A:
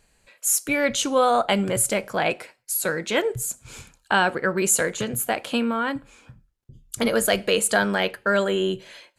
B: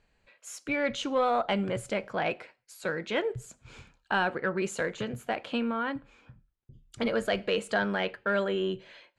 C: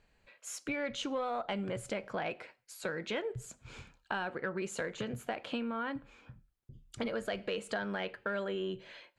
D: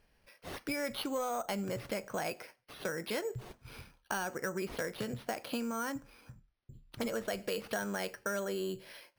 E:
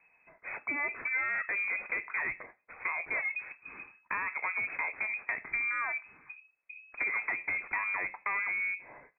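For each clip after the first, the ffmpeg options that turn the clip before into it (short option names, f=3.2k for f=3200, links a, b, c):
-af "aeval=exprs='0.501*(cos(1*acos(clip(val(0)/0.501,-1,1)))-cos(1*PI/2))+0.0282*(cos(5*acos(clip(val(0)/0.501,-1,1)))-cos(5*PI/2))':c=same,lowpass=3.6k,volume=-8dB"
-af "acompressor=threshold=-34dB:ratio=4"
-af "acrusher=samples=6:mix=1:aa=0.000001"
-af "aresample=8000,aeval=exprs='clip(val(0),-1,0.02)':c=same,aresample=44100,lowpass=f=2.2k:t=q:w=0.5098,lowpass=f=2.2k:t=q:w=0.6013,lowpass=f=2.2k:t=q:w=0.9,lowpass=f=2.2k:t=q:w=2.563,afreqshift=-2600,volume=4dB"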